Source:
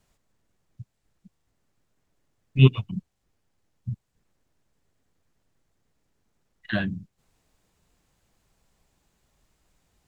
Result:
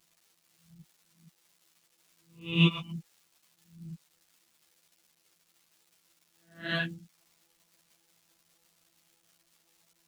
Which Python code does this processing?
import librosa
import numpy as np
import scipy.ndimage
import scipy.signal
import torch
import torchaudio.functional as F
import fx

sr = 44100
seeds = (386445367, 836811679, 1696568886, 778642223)

y = fx.spec_swells(x, sr, rise_s=0.47)
y = fx.env_lowpass(y, sr, base_hz=800.0, full_db=-27.0)
y = fx.robotise(y, sr, hz=167.0)
y = fx.dmg_crackle(y, sr, seeds[0], per_s=370.0, level_db=-55.0)
y = fx.highpass(y, sr, hz=120.0, slope=6)
y = fx.high_shelf(y, sr, hz=2500.0, db=9.5)
y = fx.ensemble(y, sr)